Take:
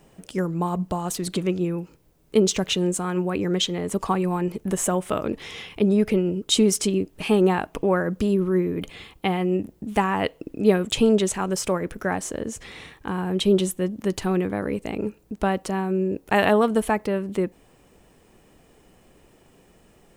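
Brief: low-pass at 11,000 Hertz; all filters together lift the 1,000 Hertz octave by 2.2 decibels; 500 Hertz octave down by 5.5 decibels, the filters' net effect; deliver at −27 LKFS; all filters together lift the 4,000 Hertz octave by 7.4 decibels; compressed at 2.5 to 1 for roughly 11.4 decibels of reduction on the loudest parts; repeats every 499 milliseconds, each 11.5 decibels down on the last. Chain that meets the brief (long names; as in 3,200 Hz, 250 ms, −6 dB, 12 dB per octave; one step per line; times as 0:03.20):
low-pass filter 11,000 Hz
parametric band 500 Hz −9 dB
parametric band 1,000 Hz +5.5 dB
parametric band 4,000 Hz +9 dB
downward compressor 2.5 to 1, threshold −27 dBFS
repeating echo 499 ms, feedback 27%, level −11.5 dB
level +2.5 dB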